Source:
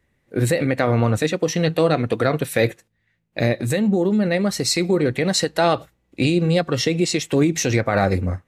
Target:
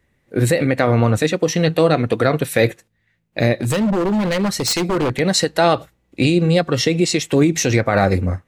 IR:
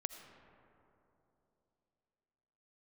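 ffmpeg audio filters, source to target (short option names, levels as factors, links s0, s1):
-filter_complex "[0:a]asplit=3[s0][s1][s2];[s0]afade=t=out:st=3.61:d=0.02[s3];[s1]aeval=exprs='0.158*(abs(mod(val(0)/0.158+3,4)-2)-1)':c=same,afade=t=in:st=3.61:d=0.02,afade=t=out:st=5.18:d=0.02[s4];[s2]afade=t=in:st=5.18:d=0.02[s5];[s3][s4][s5]amix=inputs=3:normalize=0,volume=1.41"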